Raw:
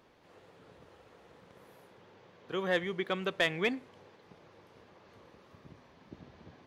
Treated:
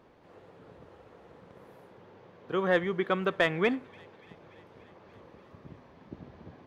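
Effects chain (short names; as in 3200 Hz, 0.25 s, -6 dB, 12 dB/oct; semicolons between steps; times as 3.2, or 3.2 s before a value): high shelf 2100 Hz -11 dB; on a send: thin delay 0.289 s, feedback 72%, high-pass 1500 Hz, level -24 dB; on the sum: dynamic EQ 1300 Hz, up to +5 dB, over -51 dBFS, Q 1.8; gain +5.5 dB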